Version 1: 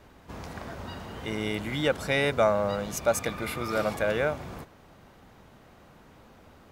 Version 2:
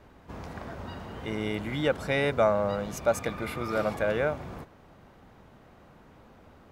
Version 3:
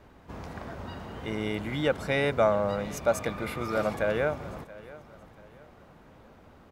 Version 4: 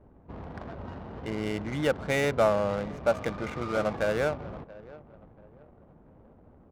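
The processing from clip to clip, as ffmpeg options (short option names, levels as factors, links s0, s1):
-af "highshelf=f=3000:g=-7.5"
-af "aecho=1:1:680|1360|2040:0.112|0.0415|0.0154"
-af "adynamicsmooth=sensitivity=7:basefreq=560"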